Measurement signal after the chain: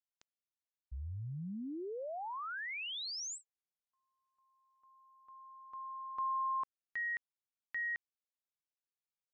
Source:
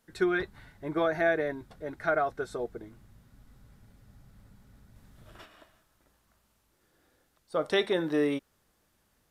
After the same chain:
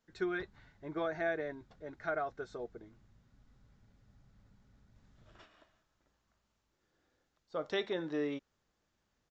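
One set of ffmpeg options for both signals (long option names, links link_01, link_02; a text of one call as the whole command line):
ffmpeg -i in.wav -af "aresample=16000,aresample=44100,volume=-8.5dB" out.wav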